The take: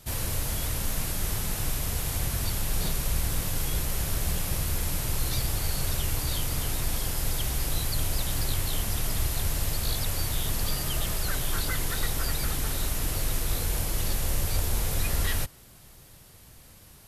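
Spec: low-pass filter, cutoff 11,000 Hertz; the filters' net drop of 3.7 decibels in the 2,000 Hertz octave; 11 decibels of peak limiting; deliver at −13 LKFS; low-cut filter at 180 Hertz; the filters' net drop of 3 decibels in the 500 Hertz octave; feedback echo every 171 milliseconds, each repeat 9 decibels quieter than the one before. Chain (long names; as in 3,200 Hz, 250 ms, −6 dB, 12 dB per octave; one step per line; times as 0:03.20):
high-pass filter 180 Hz
low-pass filter 11,000 Hz
parametric band 500 Hz −3.5 dB
parametric band 2,000 Hz −4.5 dB
brickwall limiter −32.5 dBFS
repeating echo 171 ms, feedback 35%, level −9 dB
level +26 dB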